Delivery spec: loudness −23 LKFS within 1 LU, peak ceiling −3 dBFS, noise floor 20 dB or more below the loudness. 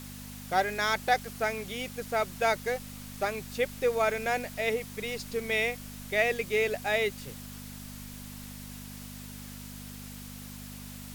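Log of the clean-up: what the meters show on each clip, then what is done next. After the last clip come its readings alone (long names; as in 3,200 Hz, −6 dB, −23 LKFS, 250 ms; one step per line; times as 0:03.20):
mains hum 50 Hz; hum harmonics up to 250 Hz; level of the hum −42 dBFS; background noise floor −44 dBFS; target noise floor −50 dBFS; integrated loudness −30.0 LKFS; sample peak −12.5 dBFS; target loudness −23.0 LKFS
→ hum removal 50 Hz, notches 5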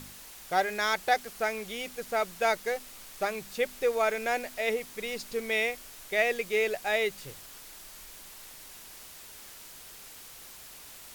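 mains hum none found; background noise floor −48 dBFS; target noise floor −50 dBFS
→ broadband denoise 6 dB, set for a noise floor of −48 dBFS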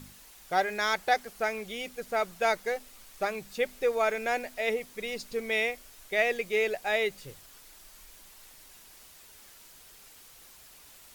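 background noise floor −54 dBFS; integrated loudness −30.0 LKFS; sample peak −12.5 dBFS; target loudness −23.0 LKFS
→ level +7 dB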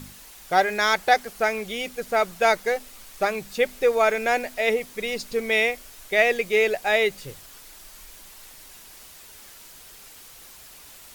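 integrated loudness −23.0 LKFS; sample peak −5.5 dBFS; background noise floor −47 dBFS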